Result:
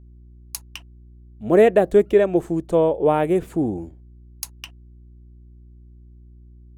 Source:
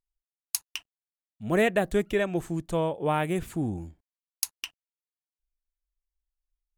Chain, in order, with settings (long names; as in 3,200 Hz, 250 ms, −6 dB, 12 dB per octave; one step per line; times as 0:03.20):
parametric band 440 Hz +14.5 dB 2.2 octaves
hum with harmonics 60 Hz, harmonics 6, −43 dBFS −9 dB per octave
level −2.5 dB